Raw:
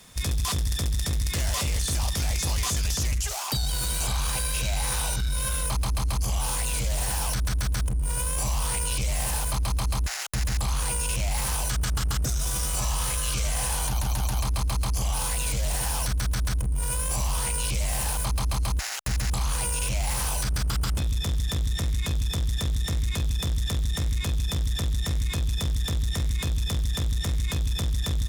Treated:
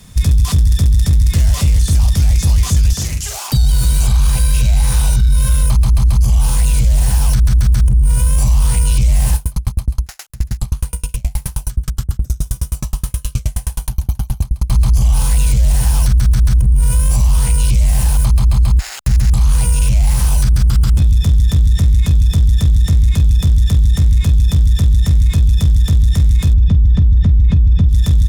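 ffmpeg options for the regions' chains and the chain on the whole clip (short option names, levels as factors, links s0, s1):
-filter_complex "[0:a]asettb=1/sr,asplit=3[s0][s1][s2];[s0]atrim=end=2.934[s3];[s1]atrim=start=2.93:end=3.48,asetpts=PTS-STARTPTS,afade=t=in:d=0.004:c=qsin,afade=t=out:st=0.546:d=0.004:c=qsin,highpass=f=290:p=1,asplit=2[s4][s5];[s5]adelay=44,volume=0.631[s6];[s4][s6]amix=inputs=2:normalize=0,atrim=end_sample=24255[s7];[s2]atrim=start=3.476[s8];[s3][s7]acrossfade=d=0.004:c1=hsin:c2=qsin[s9];[s9][s8]acrossfade=d=0.004:c1=qsin:c2=hsin,asettb=1/sr,asplit=3[s10][s11][s12];[s10]atrim=end=9.354[s13];[s11]atrim=start=9.35:end=14.7,asetpts=PTS-STARTPTS,afade=t=in:d=0.004:c=qsin,afade=t=out:st=5.346:d=0.004:c=qsin,equalizer=f=13000:w=1:g=6.5,aeval=exprs='val(0)*pow(10,-39*if(lt(mod(9.5*n/s,1),2*abs(9.5)/1000),1-mod(9.5*n/s,1)/(2*abs(9.5)/1000),(mod(9.5*n/s,1)-2*abs(9.5)/1000)/(1-2*abs(9.5)/1000))/20)':c=same[s14];[s12]atrim=start=14.696[s15];[s13][s14]acrossfade=d=0.004:c1=hsin:c2=qsin[s16];[s16][s15]acrossfade=d=0.004:c1=qsin:c2=hsin,asettb=1/sr,asplit=3[s17][s18][s19];[s17]atrim=end=18.404[s20];[s18]atrim=start=18.4:end=19.06,asetpts=PTS-STARTPTS,afade=t=in:d=0.004:c=qsin,afade=t=out:st=0.656:d=0.004:c=qsin,equalizer=f=11000:w=3.4:g=-7,bandreject=f=5900:w=7[s21];[s19]atrim=start=19.056[s22];[s20][s21]acrossfade=d=0.004:c1=hsin:c2=qsin[s23];[s23][s22]acrossfade=d=0.004:c1=qsin:c2=hsin,asettb=1/sr,asplit=3[s24][s25][s26];[s24]atrim=end=26.534[s27];[s25]atrim=start=26.53:end=27.89,asetpts=PTS-STARTPTS,afade=t=in:d=0.004:c=qsin,afade=t=out:st=1.356:d=0.004:c=qsin,lowpass=3600,lowshelf=f=350:g=11.5[s28];[s26]atrim=start=27.886[s29];[s27][s28]acrossfade=d=0.004:c1=hsin:c2=qsin[s30];[s30][s29]acrossfade=d=0.004:c1=qsin:c2=hsin,bass=f=250:g=15,treble=f=4000:g=2,alimiter=limit=0.376:level=0:latency=1:release=73,volume=1.5"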